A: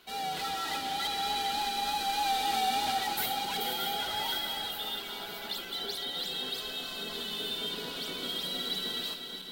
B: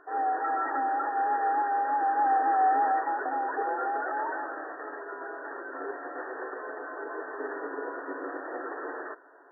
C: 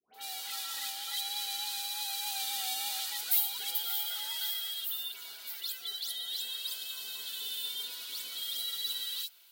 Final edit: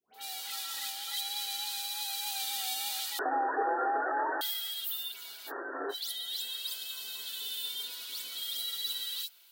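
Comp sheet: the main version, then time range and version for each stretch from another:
C
0:03.19–0:04.41: punch in from B
0:05.49–0:05.92: punch in from B, crossfade 0.06 s
not used: A

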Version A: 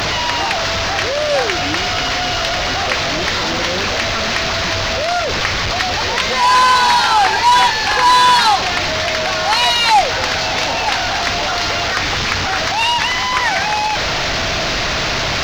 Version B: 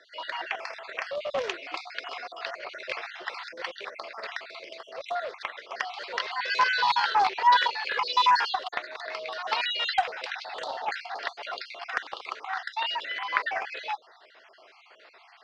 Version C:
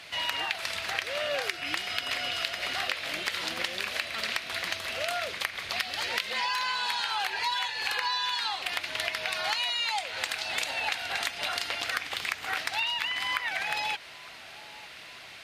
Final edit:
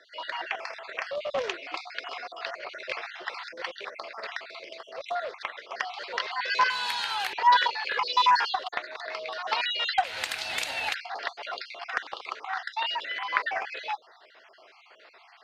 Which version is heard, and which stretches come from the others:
B
0:06.70–0:07.33: punch in from C
0:10.04–0:10.94: punch in from C
not used: A

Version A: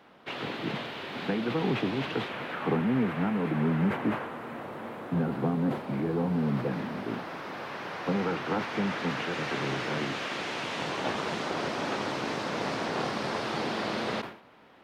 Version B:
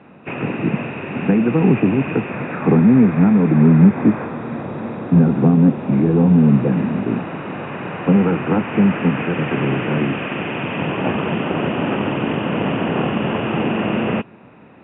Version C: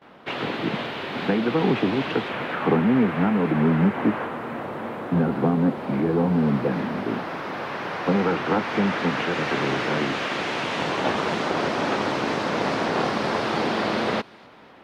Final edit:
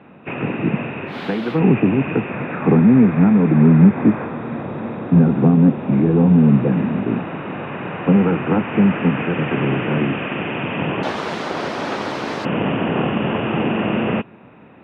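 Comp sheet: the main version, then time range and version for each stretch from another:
B
0:01.11–0:01.56: punch in from C, crossfade 0.10 s
0:11.03–0:12.45: punch in from C
not used: A

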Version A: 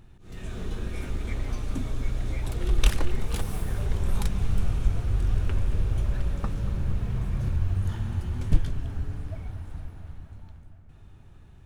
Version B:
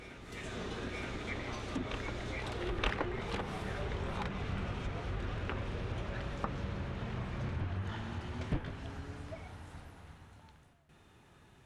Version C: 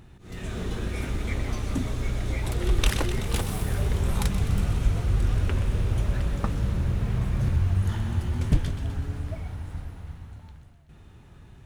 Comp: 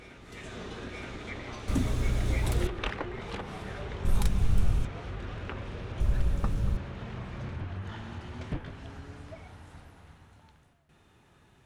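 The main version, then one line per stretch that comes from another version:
B
0:01.68–0:02.67: punch in from C
0:04.05–0:04.85: punch in from A
0:06.00–0:06.77: punch in from A

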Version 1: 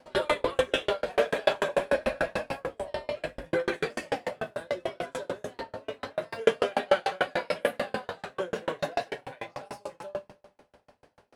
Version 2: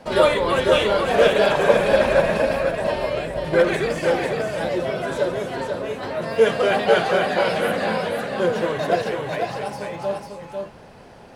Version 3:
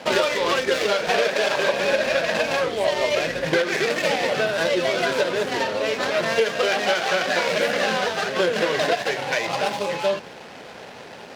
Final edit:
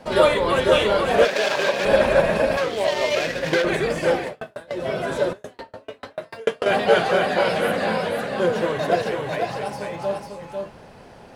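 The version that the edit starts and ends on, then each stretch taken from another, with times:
2
0:01.25–0:01.85: punch in from 3
0:02.57–0:03.64: punch in from 3
0:04.24–0:04.79: punch in from 1, crossfade 0.24 s
0:05.33–0:06.66: punch in from 1

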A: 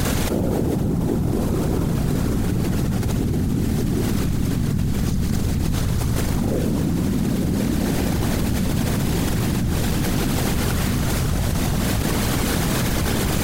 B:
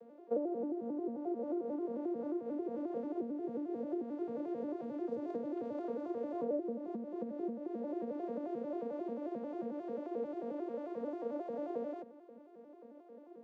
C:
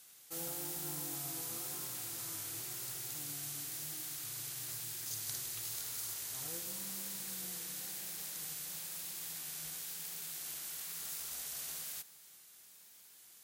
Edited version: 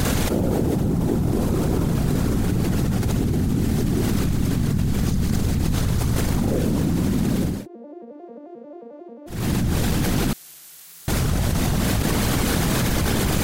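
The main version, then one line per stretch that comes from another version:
A
0:07.55–0:09.38: punch in from B, crossfade 0.24 s
0:10.33–0:11.08: punch in from C

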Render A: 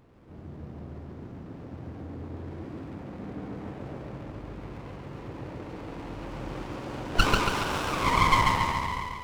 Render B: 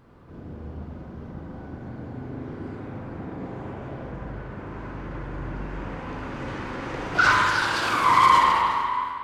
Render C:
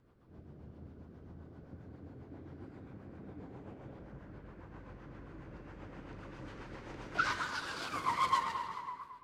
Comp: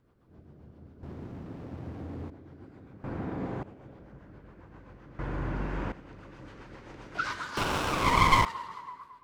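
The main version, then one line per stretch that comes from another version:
C
0:01.03–0:02.30: punch in from A
0:03.04–0:03.63: punch in from B
0:05.19–0:05.92: punch in from B
0:07.57–0:08.45: punch in from A

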